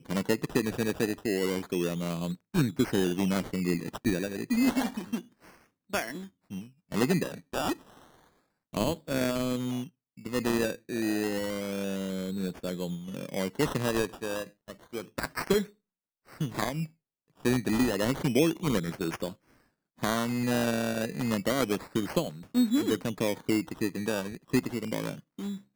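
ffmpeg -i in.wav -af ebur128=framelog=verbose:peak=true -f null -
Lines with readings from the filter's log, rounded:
Integrated loudness:
  I:         -30.4 LUFS
  Threshold: -40.9 LUFS
Loudness range:
  LRA:         4.1 LU
  Threshold: -51.0 LUFS
  LRA low:   -33.4 LUFS
  LRA high:  -29.2 LUFS
True peak:
  Peak:      -11.9 dBFS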